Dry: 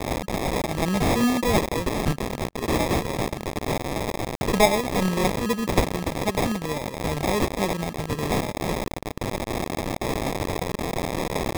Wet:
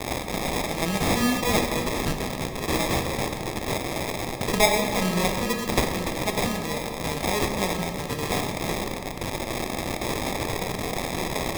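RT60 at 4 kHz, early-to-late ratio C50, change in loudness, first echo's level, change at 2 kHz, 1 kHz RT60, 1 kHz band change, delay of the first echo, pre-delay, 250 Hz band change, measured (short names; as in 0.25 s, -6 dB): 1.5 s, 6.0 dB, -0.5 dB, none, +1.5 dB, 2.3 s, -1.0 dB, none, 12 ms, -2.5 dB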